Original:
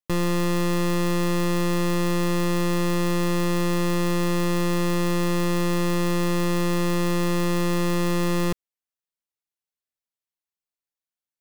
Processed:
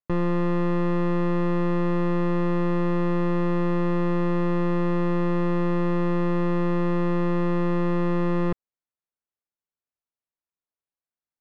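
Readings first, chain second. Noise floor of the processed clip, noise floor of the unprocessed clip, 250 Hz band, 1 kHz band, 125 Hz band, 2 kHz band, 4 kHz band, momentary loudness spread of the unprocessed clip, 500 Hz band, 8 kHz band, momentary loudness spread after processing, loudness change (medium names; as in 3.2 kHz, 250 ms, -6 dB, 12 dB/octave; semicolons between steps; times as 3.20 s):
under -85 dBFS, under -85 dBFS, 0.0 dB, -1.0 dB, 0.0 dB, -5.0 dB, under -10 dB, 0 LU, 0.0 dB, under -25 dB, 0 LU, -0.5 dB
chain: low-pass 1.6 kHz 12 dB/octave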